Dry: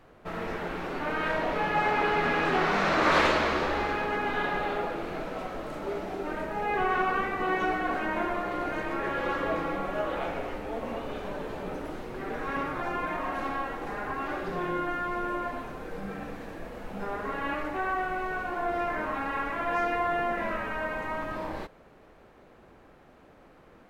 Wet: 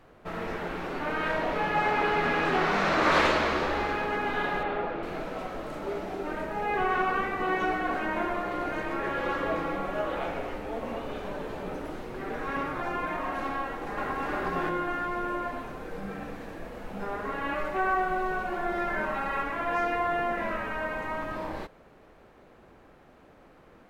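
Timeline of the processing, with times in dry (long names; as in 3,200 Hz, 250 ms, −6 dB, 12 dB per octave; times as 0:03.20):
0:04.63–0:05.03: low-pass filter 3,100 Hz
0:13.61–0:14.33: delay throw 360 ms, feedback 35%, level −0.5 dB
0:17.55–0:19.43: comb filter 5.2 ms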